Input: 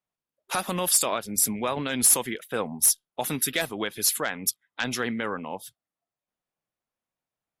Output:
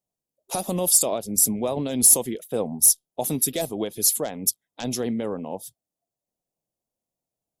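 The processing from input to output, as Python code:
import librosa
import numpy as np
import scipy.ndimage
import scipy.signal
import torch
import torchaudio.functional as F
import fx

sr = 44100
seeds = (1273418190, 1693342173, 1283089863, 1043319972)

y = fx.curve_eq(x, sr, hz=(680.0, 1500.0, 6700.0), db=(0, -20, 0))
y = F.gain(torch.from_numpy(y), 4.0).numpy()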